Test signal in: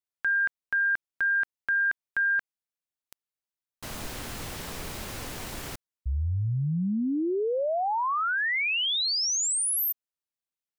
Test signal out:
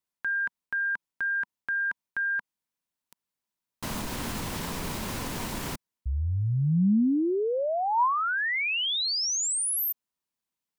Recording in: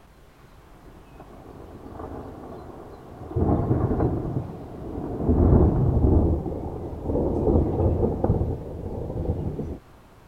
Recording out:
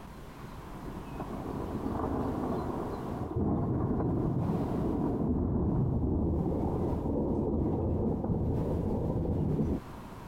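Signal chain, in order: reverse; compression 5:1, threshold -30 dBFS; reverse; peak limiter -28.5 dBFS; small resonant body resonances 200/970 Hz, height 7 dB, ringing for 20 ms; trim +3.5 dB

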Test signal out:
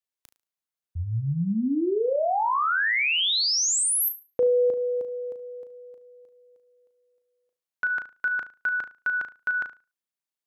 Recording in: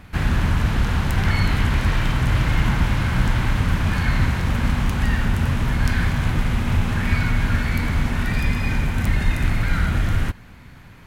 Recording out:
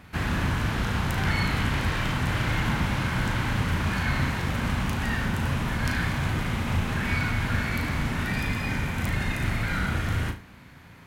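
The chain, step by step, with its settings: high-pass 120 Hz 6 dB/octave; on a send: flutter echo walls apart 6.2 m, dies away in 0.29 s; on the sum: trim -3 dB

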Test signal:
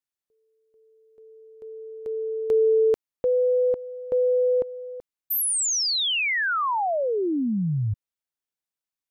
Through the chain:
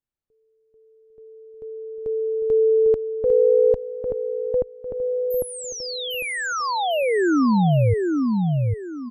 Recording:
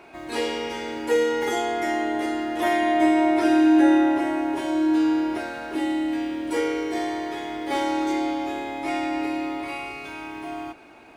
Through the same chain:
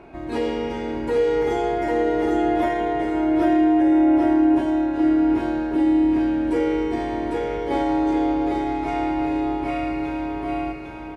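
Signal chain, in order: tilt EQ -3.5 dB/octave; peak limiter -14.5 dBFS; feedback delay 801 ms, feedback 30%, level -3 dB

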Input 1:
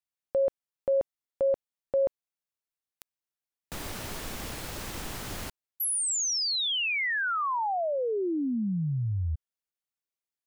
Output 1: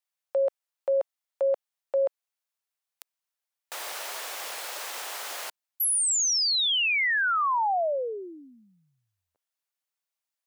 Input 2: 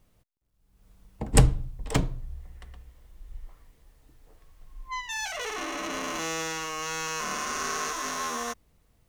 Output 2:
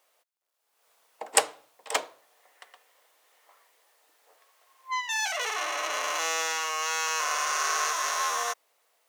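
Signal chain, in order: high-pass 550 Hz 24 dB/octave; trim +4 dB

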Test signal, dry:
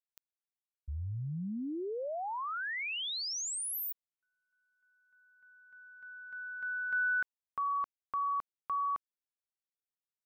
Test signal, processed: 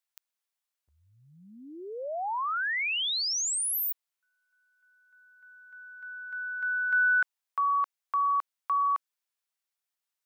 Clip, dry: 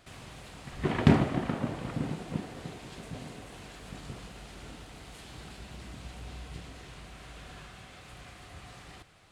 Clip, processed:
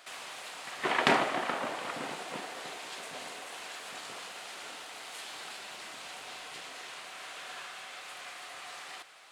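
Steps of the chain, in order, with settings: high-pass 710 Hz 12 dB/octave; trim +7.5 dB

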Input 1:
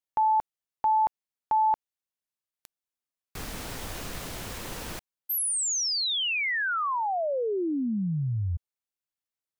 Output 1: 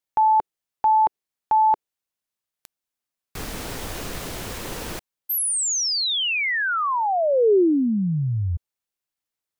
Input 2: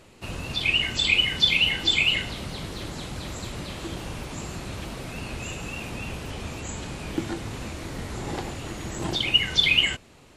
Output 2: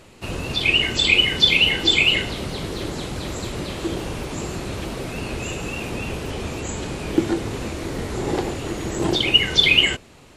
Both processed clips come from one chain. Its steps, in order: dynamic bell 400 Hz, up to +8 dB, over -46 dBFS, Q 1.4; trim +4.5 dB

